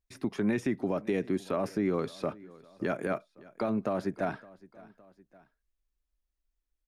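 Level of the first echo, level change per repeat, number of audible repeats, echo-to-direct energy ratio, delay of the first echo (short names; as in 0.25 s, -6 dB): -22.0 dB, -5.0 dB, 2, -21.0 dB, 0.563 s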